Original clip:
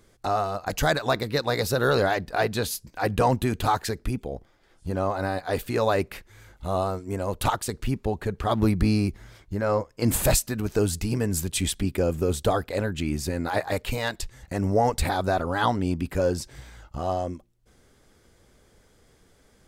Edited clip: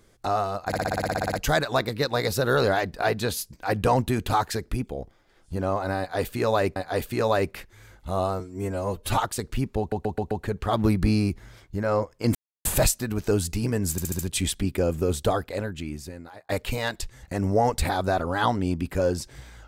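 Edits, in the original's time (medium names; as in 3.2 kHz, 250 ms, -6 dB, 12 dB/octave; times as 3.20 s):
0.67 s: stutter 0.06 s, 12 plays
5.33–6.10 s: loop, 2 plays
6.97–7.51 s: stretch 1.5×
8.09 s: stutter 0.13 s, 5 plays
10.13 s: insert silence 0.30 s
11.39 s: stutter 0.07 s, 5 plays
12.43–13.69 s: fade out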